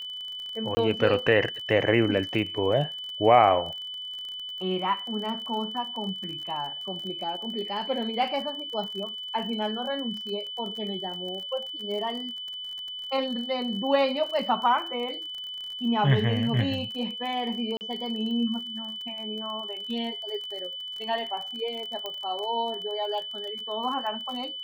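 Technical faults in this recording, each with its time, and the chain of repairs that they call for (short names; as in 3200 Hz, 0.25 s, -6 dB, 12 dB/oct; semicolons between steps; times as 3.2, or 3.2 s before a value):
crackle 32/s -34 dBFS
tone 3000 Hz -34 dBFS
0.75–0.77 gap 20 ms
17.77–17.81 gap 39 ms
22.06 pop -19 dBFS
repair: de-click; notch 3000 Hz, Q 30; interpolate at 0.75, 20 ms; interpolate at 17.77, 39 ms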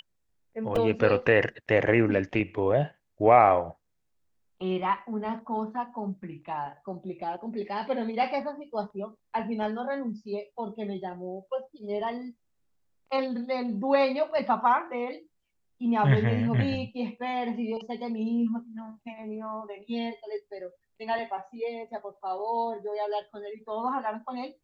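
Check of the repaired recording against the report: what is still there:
none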